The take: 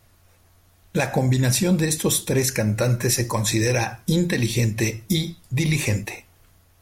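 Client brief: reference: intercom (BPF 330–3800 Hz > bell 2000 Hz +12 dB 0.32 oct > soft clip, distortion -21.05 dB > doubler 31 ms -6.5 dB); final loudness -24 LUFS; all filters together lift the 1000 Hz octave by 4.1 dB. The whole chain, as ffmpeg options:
-filter_complex "[0:a]highpass=330,lowpass=3.8k,equalizer=f=1k:t=o:g=5,equalizer=f=2k:t=o:w=0.32:g=12,asoftclip=threshold=-10.5dB,asplit=2[a][b];[b]adelay=31,volume=-6.5dB[c];[a][c]amix=inputs=2:normalize=0"

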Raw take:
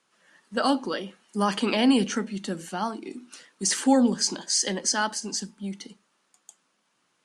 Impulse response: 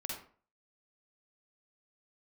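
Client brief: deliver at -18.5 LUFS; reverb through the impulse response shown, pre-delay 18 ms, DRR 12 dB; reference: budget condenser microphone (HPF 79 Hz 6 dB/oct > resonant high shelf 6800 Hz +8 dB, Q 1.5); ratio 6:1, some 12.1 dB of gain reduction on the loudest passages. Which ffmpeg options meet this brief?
-filter_complex "[0:a]acompressor=threshold=-29dB:ratio=6,asplit=2[a][b];[1:a]atrim=start_sample=2205,adelay=18[c];[b][c]afir=irnorm=-1:irlink=0,volume=-12.5dB[d];[a][d]amix=inputs=2:normalize=0,highpass=f=79:p=1,highshelf=f=6.8k:t=q:w=1.5:g=8,volume=13dB"

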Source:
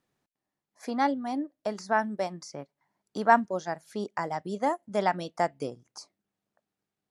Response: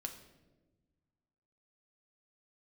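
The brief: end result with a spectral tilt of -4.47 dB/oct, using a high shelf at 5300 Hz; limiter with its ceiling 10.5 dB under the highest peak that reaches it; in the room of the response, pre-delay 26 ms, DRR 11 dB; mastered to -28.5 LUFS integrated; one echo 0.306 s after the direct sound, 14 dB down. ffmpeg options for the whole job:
-filter_complex "[0:a]highshelf=f=5.3k:g=9,alimiter=limit=-16.5dB:level=0:latency=1,aecho=1:1:306:0.2,asplit=2[a][b];[1:a]atrim=start_sample=2205,adelay=26[c];[b][c]afir=irnorm=-1:irlink=0,volume=-8.5dB[d];[a][d]amix=inputs=2:normalize=0,volume=3.5dB"

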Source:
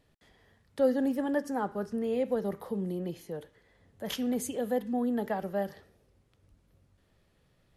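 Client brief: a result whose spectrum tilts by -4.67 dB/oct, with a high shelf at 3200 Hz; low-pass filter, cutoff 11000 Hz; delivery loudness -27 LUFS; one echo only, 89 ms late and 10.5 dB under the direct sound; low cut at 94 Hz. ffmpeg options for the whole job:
-af "highpass=94,lowpass=11k,highshelf=f=3.2k:g=-5,aecho=1:1:89:0.299,volume=5dB"

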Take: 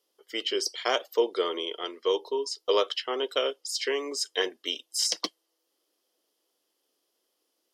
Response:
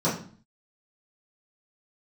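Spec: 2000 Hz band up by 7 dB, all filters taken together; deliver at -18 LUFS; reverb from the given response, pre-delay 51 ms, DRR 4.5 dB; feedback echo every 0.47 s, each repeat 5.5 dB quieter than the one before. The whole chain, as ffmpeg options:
-filter_complex "[0:a]equalizer=f=2k:t=o:g=8.5,aecho=1:1:470|940|1410|1880|2350|2820|3290:0.531|0.281|0.149|0.079|0.0419|0.0222|0.0118,asplit=2[a][b];[1:a]atrim=start_sample=2205,adelay=51[c];[b][c]afir=irnorm=-1:irlink=0,volume=-18dB[d];[a][d]amix=inputs=2:normalize=0,volume=6.5dB"

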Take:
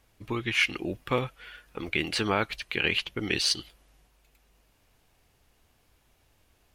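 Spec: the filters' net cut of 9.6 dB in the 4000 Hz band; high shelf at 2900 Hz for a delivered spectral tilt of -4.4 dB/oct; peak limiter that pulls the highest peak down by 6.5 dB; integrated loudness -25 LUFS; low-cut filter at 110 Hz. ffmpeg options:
-af "highpass=110,highshelf=f=2.9k:g=-5.5,equalizer=f=4k:t=o:g=-9,volume=9dB,alimiter=limit=-9dB:level=0:latency=1"

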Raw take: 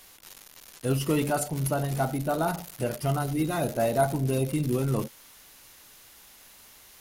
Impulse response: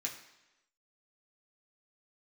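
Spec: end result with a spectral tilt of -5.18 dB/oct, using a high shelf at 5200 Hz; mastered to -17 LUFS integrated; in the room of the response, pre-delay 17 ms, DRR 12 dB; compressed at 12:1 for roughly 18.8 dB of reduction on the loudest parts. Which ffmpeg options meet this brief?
-filter_complex "[0:a]highshelf=f=5.2k:g=-3.5,acompressor=threshold=-39dB:ratio=12,asplit=2[a][b];[1:a]atrim=start_sample=2205,adelay=17[c];[b][c]afir=irnorm=-1:irlink=0,volume=-12.5dB[d];[a][d]amix=inputs=2:normalize=0,volume=27.5dB"

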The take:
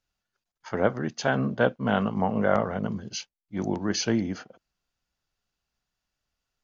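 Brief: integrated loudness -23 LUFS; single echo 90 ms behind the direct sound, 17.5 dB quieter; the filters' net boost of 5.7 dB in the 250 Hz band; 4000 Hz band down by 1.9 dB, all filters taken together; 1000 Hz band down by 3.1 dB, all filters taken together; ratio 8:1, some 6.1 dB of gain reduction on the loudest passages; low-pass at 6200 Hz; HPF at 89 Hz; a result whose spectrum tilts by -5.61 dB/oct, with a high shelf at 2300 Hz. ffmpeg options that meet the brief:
-af "highpass=89,lowpass=6.2k,equalizer=f=250:t=o:g=7.5,equalizer=f=1k:t=o:g=-6.5,highshelf=f=2.3k:g=7.5,equalizer=f=4k:t=o:g=-8.5,acompressor=threshold=-22dB:ratio=8,aecho=1:1:90:0.133,volume=5.5dB"

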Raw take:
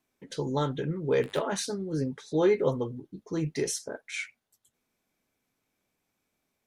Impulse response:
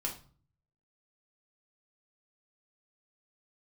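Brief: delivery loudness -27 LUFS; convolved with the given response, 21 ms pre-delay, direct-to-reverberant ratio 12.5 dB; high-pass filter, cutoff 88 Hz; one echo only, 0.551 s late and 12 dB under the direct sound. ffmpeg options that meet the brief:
-filter_complex "[0:a]highpass=88,aecho=1:1:551:0.251,asplit=2[a][b];[1:a]atrim=start_sample=2205,adelay=21[c];[b][c]afir=irnorm=-1:irlink=0,volume=-14.5dB[d];[a][d]amix=inputs=2:normalize=0,volume=2.5dB"

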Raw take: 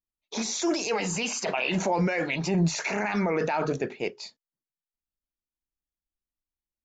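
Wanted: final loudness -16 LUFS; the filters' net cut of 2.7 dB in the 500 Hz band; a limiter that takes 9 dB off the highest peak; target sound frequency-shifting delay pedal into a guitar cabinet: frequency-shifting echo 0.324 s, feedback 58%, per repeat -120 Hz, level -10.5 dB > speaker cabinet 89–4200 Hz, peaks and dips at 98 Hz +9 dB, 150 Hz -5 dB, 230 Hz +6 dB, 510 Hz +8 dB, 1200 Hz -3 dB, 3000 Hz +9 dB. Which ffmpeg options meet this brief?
-filter_complex "[0:a]equalizer=f=500:t=o:g=-8.5,alimiter=level_in=0.5dB:limit=-24dB:level=0:latency=1,volume=-0.5dB,asplit=8[a][b][c][d][e][f][g][h];[b]adelay=324,afreqshift=-120,volume=-10.5dB[i];[c]adelay=648,afreqshift=-240,volume=-15.2dB[j];[d]adelay=972,afreqshift=-360,volume=-20dB[k];[e]adelay=1296,afreqshift=-480,volume=-24.7dB[l];[f]adelay=1620,afreqshift=-600,volume=-29.4dB[m];[g]adelay=1944,afreqshift=-720,volume=-34.2dB[n];[h]adelay=2268,afreqshift=-840,volume=-38.9dB[o];[a][i][j][k][l][m][n][o]amix=inputs=8:normalize=0,highpass=89,equalizer=f=98:t=q:w=4:g=9,equalizer=f=150:t=q:w=4:g=-5,equalizer=f=230:t=q:w=4:g=6,equalizer=f=510:t=q:w=4:g=8,equalizer=f=1.2k:t=q:w=4:g=-3,equalizer=f=3k:t=q:w=4:g=9,lowpass=f=4.2k:w=0.5412,lowpass=f=4.2k:w=1.3066,volume=16dB"

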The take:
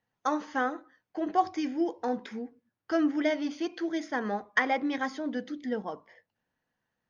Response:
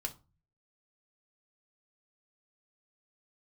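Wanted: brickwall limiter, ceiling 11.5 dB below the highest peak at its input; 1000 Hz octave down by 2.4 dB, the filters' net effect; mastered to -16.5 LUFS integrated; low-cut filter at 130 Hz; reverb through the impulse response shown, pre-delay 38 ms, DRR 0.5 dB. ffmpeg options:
-filter_complex "[0:a]highpass=130,equalizer=f=1k:t=o:g=-3.5,alimiter=limit=-23.5dB:level=0:latency=1,asplit=2[a][b];[1:a]atrim=start_sample=2205,adelay=38[c];[b][c]afir=irnorm=-1:irlink=0,volume=0dB[d];[a][d]amix=inputs=2:normalize=0,volume=14.5dB"

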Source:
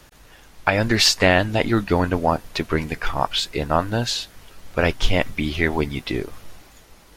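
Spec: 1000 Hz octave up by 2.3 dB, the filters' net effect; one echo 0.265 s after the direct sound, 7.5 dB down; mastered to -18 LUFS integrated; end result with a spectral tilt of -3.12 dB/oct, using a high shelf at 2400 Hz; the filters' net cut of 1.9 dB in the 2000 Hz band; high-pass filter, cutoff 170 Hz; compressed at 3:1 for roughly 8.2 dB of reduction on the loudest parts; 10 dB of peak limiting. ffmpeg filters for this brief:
-af "highpass=170,equalizer=f=1k:t=o:g=3.5,equalizer=f=2k:t=o:g=-6,highshelf=f=2.4k:g=5.5,acompressor=threshold=-21dB:ratio=3,alimiter=limit=-14.5dB:level=0:latency=1,aecho=1:1:265:0.422,volume=9.5dB"

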